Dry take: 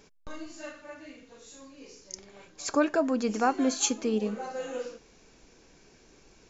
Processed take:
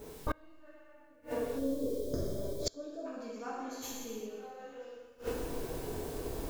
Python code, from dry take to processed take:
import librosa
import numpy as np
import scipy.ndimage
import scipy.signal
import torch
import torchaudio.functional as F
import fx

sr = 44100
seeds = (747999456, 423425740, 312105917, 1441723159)

p1 = fx.tracing_dist(x, sr, depth_ms=0.061)
p2 = fx.env_lowpass(p1, sr, base_hz=720.0, full_db=-27.0)
p3 = fx.room_flutter(p2, sr, wall_m=10.2, rt60_s=0.96, at=(0.52, 1.0))
p4 = fx.quant_dither(p3, sr, seeds[0], bits=12, dither='triangular')
p5 = fx.rider(p4, sr, range_db=4, speed_s=2.0)
p6 = p4 + (p5 * 10.0 ** (1.0 / 20.0))
p7 = fx.peak_eq(p6, sr, hz=200.0, db=-8.5, octaves=0.39)
p8 = fx.rev_gated(p7, sr, seeds[1], gate_ms=420, shape='falling', drr_db=-7.5)
p9 = fx.spec_box(p8, sr, start_s=1.59, length_s=1.47, low_hz=700.0, high_hz=3100.0, gain_db=-18)
p10 = p9 + fx.echo_feedback(p9, sr, ms=122, feedback_pct=50, wet_db=-13.0, dry=0)
p11 = fx.gate_flip(p10, sr, shuts_db=-24.0, range_db=-32)
y = p11 * 10.0 ** (4.0 / 20.0)